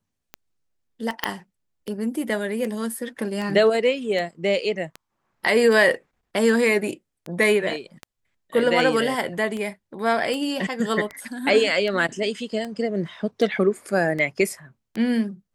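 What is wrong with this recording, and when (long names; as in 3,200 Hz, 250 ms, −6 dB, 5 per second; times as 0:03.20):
scratch tick 78 rpm −18 dBFS
0:01.24: click −6 dBFS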